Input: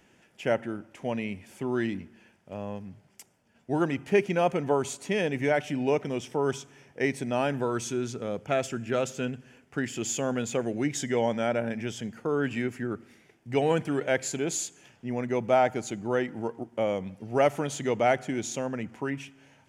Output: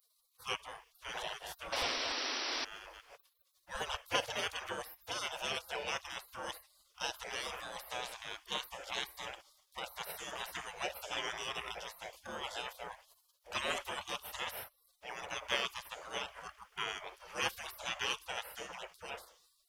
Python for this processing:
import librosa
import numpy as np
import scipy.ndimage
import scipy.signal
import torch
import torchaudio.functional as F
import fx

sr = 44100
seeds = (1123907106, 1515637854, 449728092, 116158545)

y = fx.reverse_delay(x, sr, ms=148, wet_db=-2.5, at=(0.79, 3.95))
y = fx.spec_gate(y, sr, threshold_db=-30, keep='weak')
y = fx.graphic_eq_10(y, sr, hz=(250, 500, 2000, 8000), db=(-8, 8, -4, -9))
y = fx.spec_paint(y, sr, seeds[0], shape='noise', start_s=1.72, length_s=0.93, low_hz=240.0, high_hz=5900.0, level_db=-50.0)
y = F.gain(torch.from_numpy(y), 12.5).numpy()